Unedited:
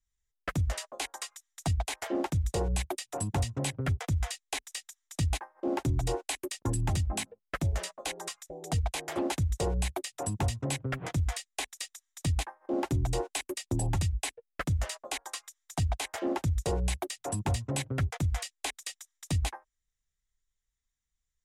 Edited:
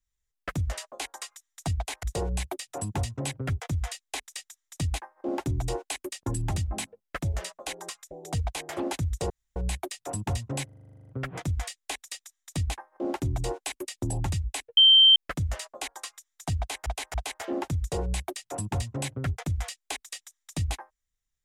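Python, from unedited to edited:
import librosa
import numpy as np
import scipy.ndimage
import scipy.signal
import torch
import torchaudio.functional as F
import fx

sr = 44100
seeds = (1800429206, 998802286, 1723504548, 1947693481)

y = fx.edit(x, sr, fx.cut(start_s=2.03, length_s=0.39),
    fx.insert_room_tone(at_s=9.69, length_s=0.26),
    fx.stutter(start_s=10.78, slice_s=0.04, count=12),
    fx.insert_tone(at_s=14.46, length_s=0.39, hz=3130.0, db=-12.5),
    fx.repeat(start_s=15.88, length_s=0.28, count=3), tone=tone)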